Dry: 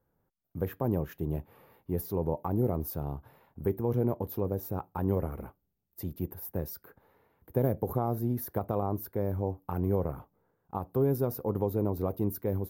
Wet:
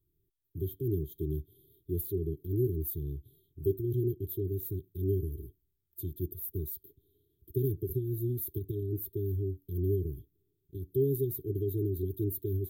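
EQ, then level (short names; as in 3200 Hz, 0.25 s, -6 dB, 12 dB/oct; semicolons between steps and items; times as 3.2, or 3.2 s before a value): brick-wall FIR band-stop 420–3100 Hz; fixed phaser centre 1100 Hz, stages 8; +3.5 dB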